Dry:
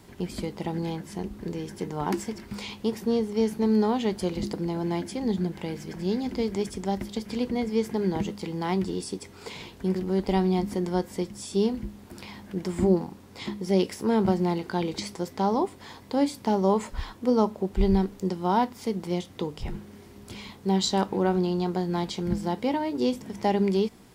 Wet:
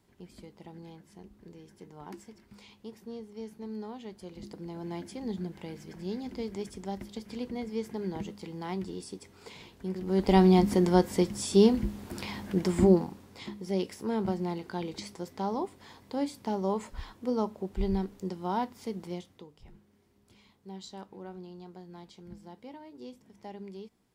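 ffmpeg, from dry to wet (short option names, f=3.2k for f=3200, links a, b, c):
-af "volume=4dB,afade=t=in:st=4.25:d=0.81:silence=0.375837,afade=t=in:st=9.98:d=0.44:silence=0.237137,afade=t=out:st=12.47:d=1:silence=0.266073,afade=t=out:st=19.03:d=0.42:silence=0.237137"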